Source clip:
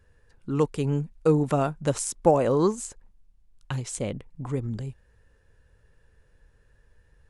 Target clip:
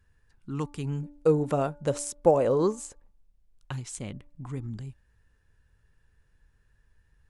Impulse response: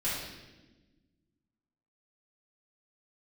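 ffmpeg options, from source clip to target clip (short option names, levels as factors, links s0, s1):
-af "bandreject=f=290.2:t=h:w=4,bandreject=f=580.4:t=h:w=4,bandreject=f=870.6:t=h:w=4,bandreject=f=1160.8:t=h:w=4,bandreject=f=1451:t=h:w=4,asetnsamples=n=441:p=0,asendcmd='1.03 equalizer g 5;3.72 equalizer g -10',equalizer=f=510:w=1.9:g=-11,volume=0.596"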